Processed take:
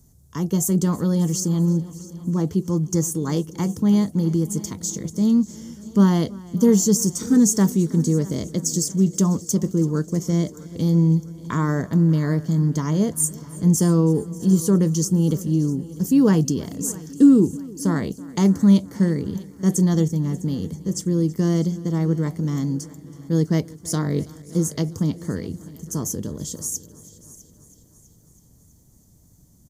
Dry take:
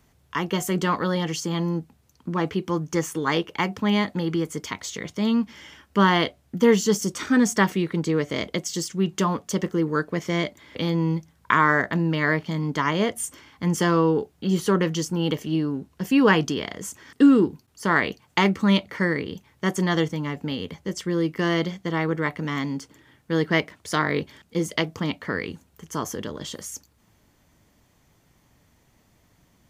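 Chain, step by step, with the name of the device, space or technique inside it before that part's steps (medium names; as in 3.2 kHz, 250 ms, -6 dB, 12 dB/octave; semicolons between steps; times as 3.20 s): FFT filter 160 Hz 0 dB, 2.6 kHz -26 dB, 6.6 kHz +1 dB; multi-head tape echo (multi-head delay 326 ms, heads first and second, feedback 51%, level -22 dB; wow and flutter 8.8 cents); delay 588 ms -22 dB; trim +8 dB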